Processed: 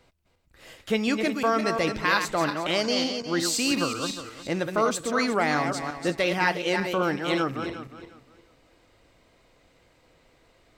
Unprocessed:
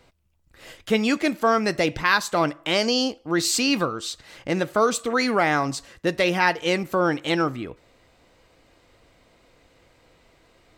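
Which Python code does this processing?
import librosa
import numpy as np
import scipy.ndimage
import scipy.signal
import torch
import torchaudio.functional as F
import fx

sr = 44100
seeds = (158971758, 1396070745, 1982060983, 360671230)

y = fx.reverse_delay_fb(x, sr, ms=179, feedback_pct=46, wet_db=-6.0)
y = fx.band_squash(y, sr, depth_pct=40, at=(3.71, 4.11))
y = y * librosa.db_to_amplitude(-4.0)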